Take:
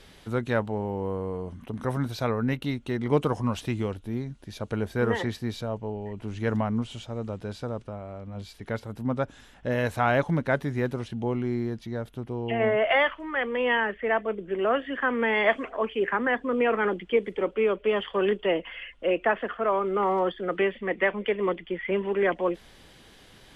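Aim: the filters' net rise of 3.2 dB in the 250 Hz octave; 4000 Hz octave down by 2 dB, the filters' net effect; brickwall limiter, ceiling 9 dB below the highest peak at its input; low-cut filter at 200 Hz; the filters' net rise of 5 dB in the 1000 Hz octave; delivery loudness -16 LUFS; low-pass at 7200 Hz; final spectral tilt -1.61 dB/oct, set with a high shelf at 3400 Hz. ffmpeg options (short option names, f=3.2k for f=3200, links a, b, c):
-af "highpass=200,lowpass=7.2k,equalizer=f=250:t=o:g=5.5,equalizer=f=1k:t=o:g=6,highshelf=f=3.4k:g=5,equalizer=f=4k:t=o:g=-7,volume=10.5dB,alimiter=limit=-4dB:level=0:latency=1"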